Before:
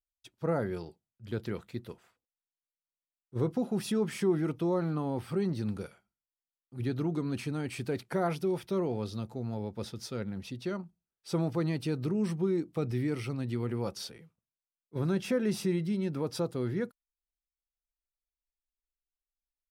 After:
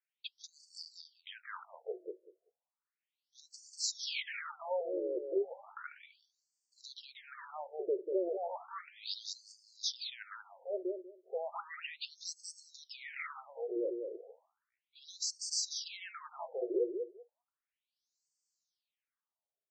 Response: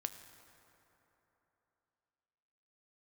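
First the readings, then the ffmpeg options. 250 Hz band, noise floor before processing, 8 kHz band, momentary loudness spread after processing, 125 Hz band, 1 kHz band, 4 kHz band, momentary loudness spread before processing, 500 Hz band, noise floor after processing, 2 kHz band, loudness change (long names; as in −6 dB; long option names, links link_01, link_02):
−15.5 dB, below −85 dBFS, +6.5 dB, 16 LU, below −40 dB, −4.5 dB, +5.0 dB, 11 LU, −5.0 dB, below −85 dBFS, −1.5 dB, −6.5 dB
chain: -filter_complex "[0:a]equalizer=frequency=6800:width_type=o:width=1.1:gain=9,alimiter=level_in=5.5dB:limit=-24dB:level=0:latency=1,volume=-5.5dB,asplit=2[link_01][link_02];[link_02]aecho=0:1:192|384|576:0.531|0.0849|0.0136[link_03];[link_01][link_03]amix=inputs=2:normalize=0,afftfilt=real='re*between(b*sr/1024,430*pow(6200/430,0.5+0.5*sin(2*PI*0.34*pts/sr))/1.41,430*pow(6200/430,0.5+0.5*sin(2*PI*0.34*pts/sr))*1.41)':imag='im*between(b*sr/1024,430*pow(6200/430,0.5+0.5*sin(2*PI*0.34*pts/sr))/1.41,430*pow(6200/430,0.5+0.5*sin(2*PI*0.34*pts/sr))*1.41)':win_size=1024:overlap=0.75,volume=8.5dB"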